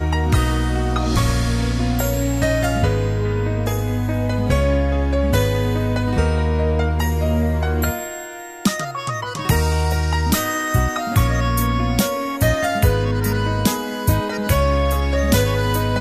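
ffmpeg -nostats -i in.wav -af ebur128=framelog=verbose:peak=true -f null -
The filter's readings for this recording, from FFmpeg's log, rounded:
Integrated loudness:
  I:         -19.6 LUFS
  Threshold: -29.7 LUFS
Loudness range:
  LRA:         2.2 LU
  Threshold: -39.8 LUFS
  LRA low:   -21.2 LUFS
  LRA high:  -19.0 LUFS
True peak:
  Peak:       -4.3 dBFS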